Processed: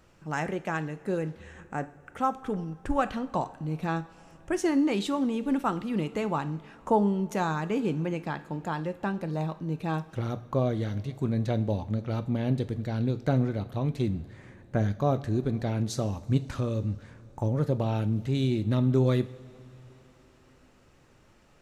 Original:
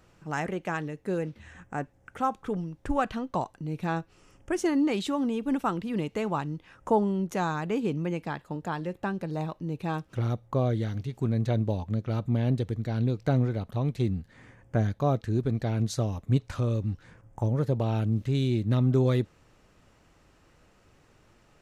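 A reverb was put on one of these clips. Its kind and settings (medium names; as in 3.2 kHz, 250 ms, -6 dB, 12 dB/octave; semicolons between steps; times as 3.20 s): two-slope reverb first 0.49 s, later 4.4 s, from -18 dB, DRR 11 dB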